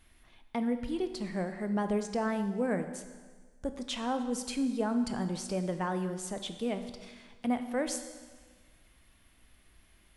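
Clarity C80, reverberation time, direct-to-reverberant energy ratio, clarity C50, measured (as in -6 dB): 11.0 dB, 1.5 s, 8.0 dB, 9.5 dB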